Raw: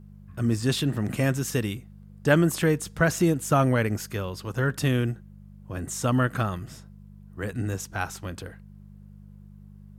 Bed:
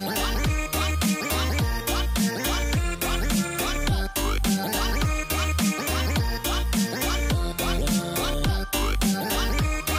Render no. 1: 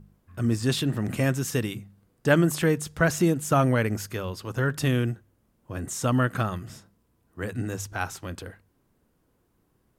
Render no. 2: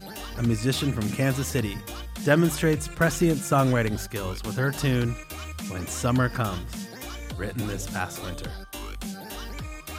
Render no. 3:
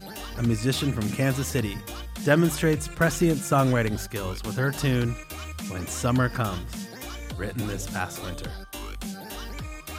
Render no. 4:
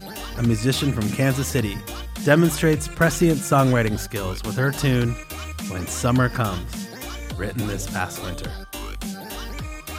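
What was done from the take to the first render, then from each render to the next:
de-hum 50 Hz, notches 4
add bed -12 dB
no audible change
trim +4 dB

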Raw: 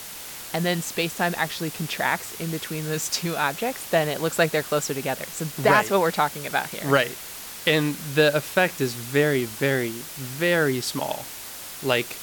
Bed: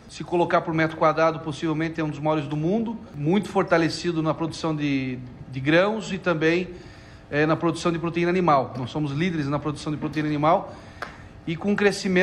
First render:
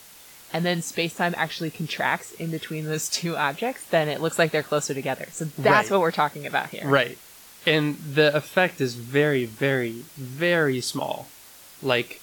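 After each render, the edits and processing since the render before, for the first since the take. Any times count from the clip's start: noise print and reduce 10 dB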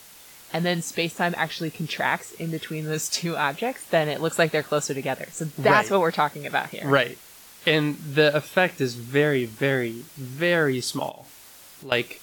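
11.09–11.92 s: compression 2.5:1, threshold -42 dBFS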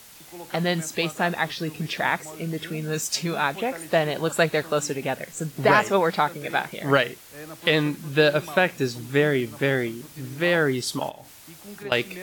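add bed -19.5 dB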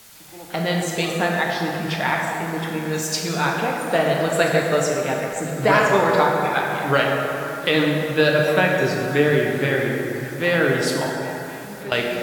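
repeats whose band climbs or falls 267 ms, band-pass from 720 Hz, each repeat 0.7 oct, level -10.5 dB; plate-style reverb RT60 3 s, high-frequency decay 0.5×, DRR -1 dB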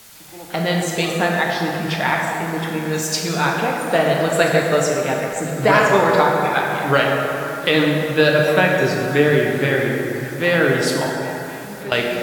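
trim +2.5 dB; peak limiter -2 dBFS, peak gain reduction 1 dB

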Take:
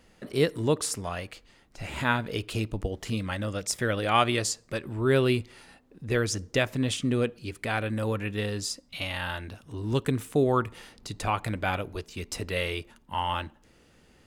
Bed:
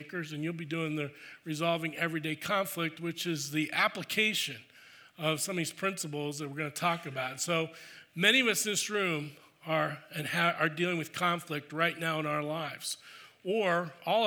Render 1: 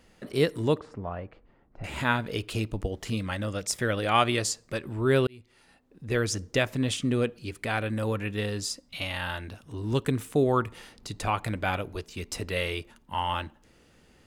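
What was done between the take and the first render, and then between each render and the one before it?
0.80–1.84 s: low-pass 1.1 kHz; 5.27–6.24 s: fade in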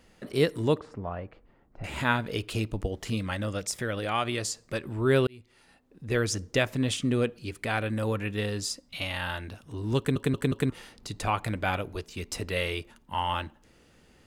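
3.69–4.63 s: compression 1.5:1, threshold -33 dBFS; 9.98 s: stutter in place 0.18 s, 4 plays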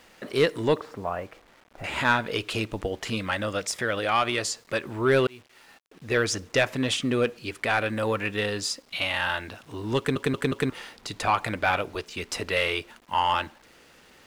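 bit crusher 10-bit; overdrive pedal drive 14 dB, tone 3.5 kHz, clips at -9 dBFS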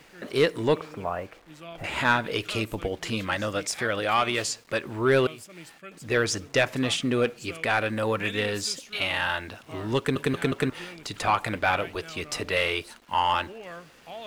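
add bed -12.5 dB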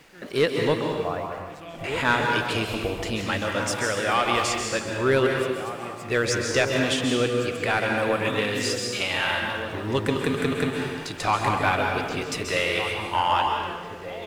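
echo from a far wall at 260 m, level -9 dB; plate-style reverb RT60 1.3 s, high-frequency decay 0.95×, pre-delay 120 ms, DRR 1.5 dB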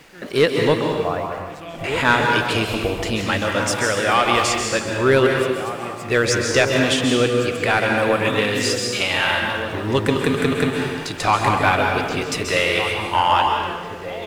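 trim +5.5 dB

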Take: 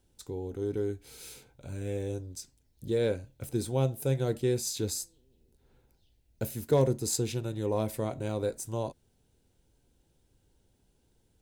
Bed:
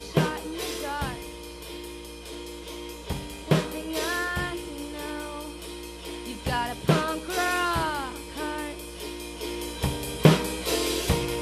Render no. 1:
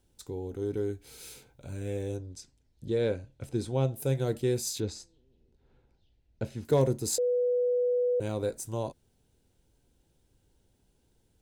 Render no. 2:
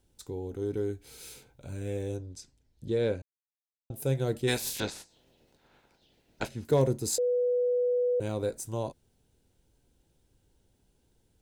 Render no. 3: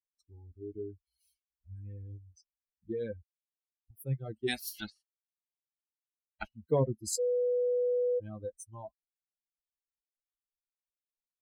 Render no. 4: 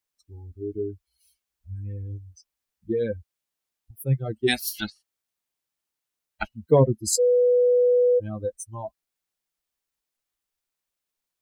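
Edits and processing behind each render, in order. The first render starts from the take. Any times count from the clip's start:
2.17–3.96 s: distance through air 59 m; 4.80–6.65 s: distance through air 130 m; 7.18–8.20 s: bleep 492 Hz -23.5 dBFS
3.22–3.90 s: mute; 4.47–6.47 s: spectral peaks clipped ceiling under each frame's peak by 25 dB
expander on every frequency bin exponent 3
trim +10.5 dB

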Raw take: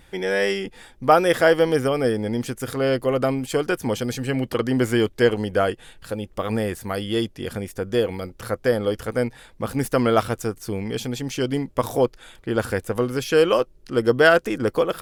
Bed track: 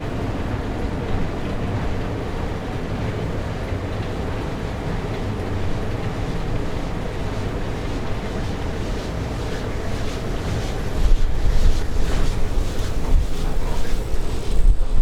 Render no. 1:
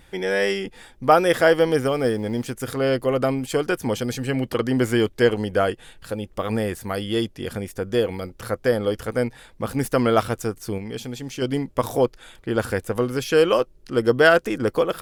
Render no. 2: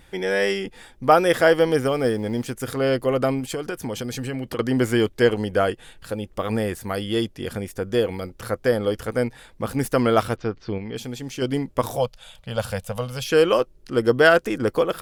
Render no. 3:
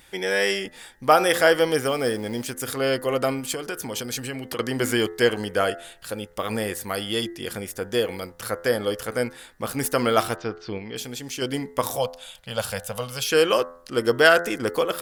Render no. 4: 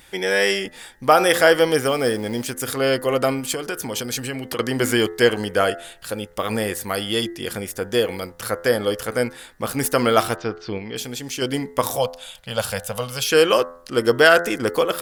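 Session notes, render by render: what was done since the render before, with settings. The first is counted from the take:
1.80–2.53 s: companding laws mixed up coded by A; 10.78–11.42 s: feedback comb 79 Hz, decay 1.7 s, harmonics odd, mix 40%
3.40–4.59 s: compression 5:1, threshold -24 dBFS; 10.36–10.96 s: steep low-pass 4.6 kHz; 11.96–13.26 s: FFT filter 190 Hz 0 dB, 340 Hz -25 dB, 560 Hz +2 dB, 1.9 kHz -7 dB, 2.9 kHz +4 dB, 7.1 kHz 0 dB
tilt EQ +2 dB/octave; de-hum 85.62 Hz, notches 24
trim +3.5 dB; peak limiter -2 dBFS, peak gain reduction 2 dB

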